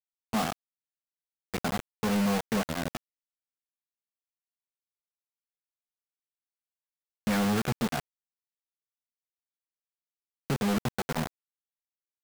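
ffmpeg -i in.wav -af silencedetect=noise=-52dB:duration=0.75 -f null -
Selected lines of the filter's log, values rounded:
silence_start: 0.53
silence_end: 1.54 | silence_duration: 1.01
silence_start: 2.97
silence_end: 7.27 | silence_duration: 4.30
silence_start: 8.00
silence_end: 10.50 | silence_duration: 2.50
silence_start: 11.27
silence_end: 12.23 | silence_duration: 0.96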